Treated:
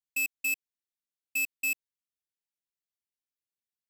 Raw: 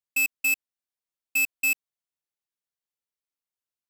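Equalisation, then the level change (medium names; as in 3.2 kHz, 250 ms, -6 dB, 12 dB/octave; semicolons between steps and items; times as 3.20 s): Butterworth band-stop 880 Hz, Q 0.65; -5.5 dB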